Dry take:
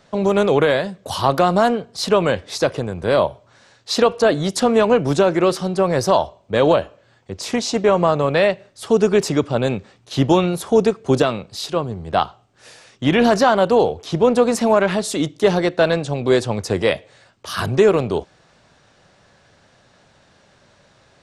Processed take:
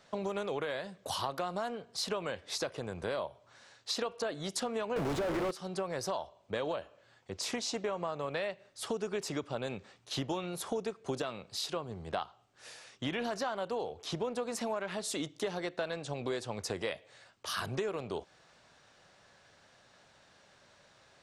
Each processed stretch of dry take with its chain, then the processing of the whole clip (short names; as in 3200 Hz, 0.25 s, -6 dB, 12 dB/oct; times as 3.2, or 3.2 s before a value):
4.96–5.51 delta modulation 64 kbps, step -21 dBFS + overdrive pedal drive 39 dB, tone 1100 Hz, clips at -3 dBFS + low shelf 270 Hz +9 dB
whole clip: low shelf 430 Hz -8 dB; compressor 5:1, threshold -27 dBFS; gain -6 dB